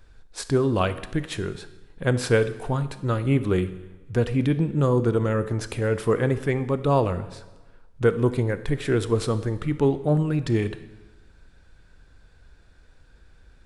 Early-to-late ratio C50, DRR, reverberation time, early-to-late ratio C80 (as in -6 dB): 14.0 dB, 12.0 dB, 1.2 s, 15.5 dB